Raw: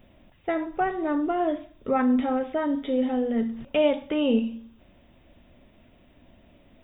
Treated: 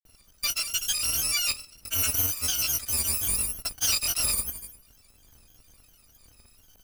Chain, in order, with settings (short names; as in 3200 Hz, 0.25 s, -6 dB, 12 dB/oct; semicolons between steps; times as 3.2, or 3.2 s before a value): FFT order left unsorted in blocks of 256 samples; grains, grains 20/s, pitch spread up and down by 3 st; hard clip -22 dBFS, distortion -14 dB; gain +1 dB